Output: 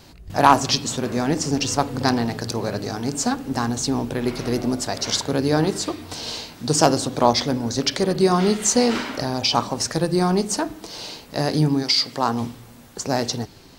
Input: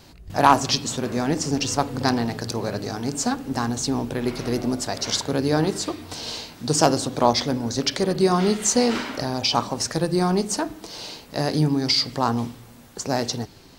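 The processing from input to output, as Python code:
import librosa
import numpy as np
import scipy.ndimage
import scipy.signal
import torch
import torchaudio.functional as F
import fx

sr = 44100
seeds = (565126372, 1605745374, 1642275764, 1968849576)

y = fx.highpass(x, sr, hz=fx.line((11.82, 600.0), (12.4, 160.0)), slope=6, at=(11.82, 12.4), fade=0.02)
y = y * 10.0 ** (1.5 / 20.0)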